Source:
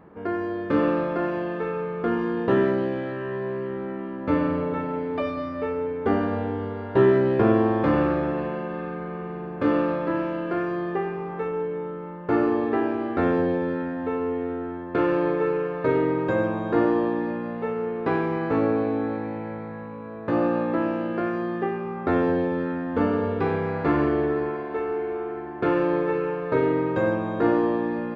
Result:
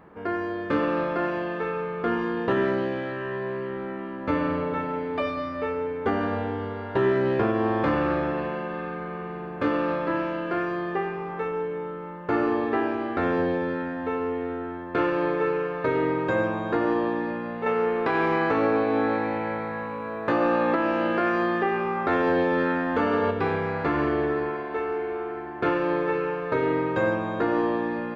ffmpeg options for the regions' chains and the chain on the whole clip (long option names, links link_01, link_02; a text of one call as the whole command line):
ffmpeg -i in.wav -filter_complex "[0:a]asettb=1/sr,asplit=3[link_01][link_02][link_03];[link_01]atrim=end=17.664[link_04];[link_02]atrim=start=17.66:end=23.31,asetpts=PTS-STARTPTS,afade=type=in:duration=0.004:curve=qsin,afade=type=out:start_time=5.646:duration=0.004:curve=qsin,acontrast=88,equalizer=frequency=73:width=0.31:gain=-7.5[link_05];[link_03]atrim=start=23.306[link_06];[link_04][link_05]acrossfade=duration=0.004:curve1=hsin:curve2=qsin[link_07];[link_07][link_06]acrossfade=duration=0.004:curve1=qsin:curve2=hsin,tiltshelf=frequency=660:gain=-4,alimiter=limit=-14dB:level=0:latency=1:release=150,lowshelf=frequency=74:gain=5.5" out.wav